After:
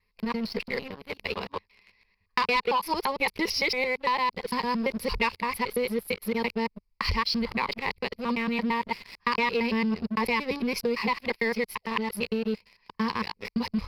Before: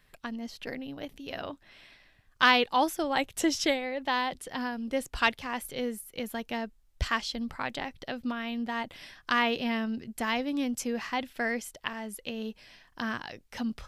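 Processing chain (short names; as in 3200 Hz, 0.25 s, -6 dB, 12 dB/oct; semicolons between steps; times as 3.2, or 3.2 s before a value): local time reversal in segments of 0.113 s; ripple EQ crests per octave 0.85, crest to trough 17 dB; sample leveller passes 3; compressor, threshold -17 dBFS, peak gain reduction 8.5 dB; resonant high shelf 5300 Hz -6.5 dB, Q 3; gain -6.5 dB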